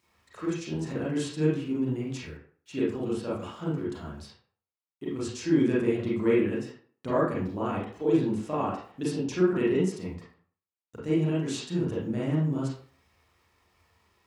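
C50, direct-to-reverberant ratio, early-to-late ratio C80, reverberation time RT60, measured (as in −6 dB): 1.5 dB, −8.5 dB, 7.5 dB, 0.50 s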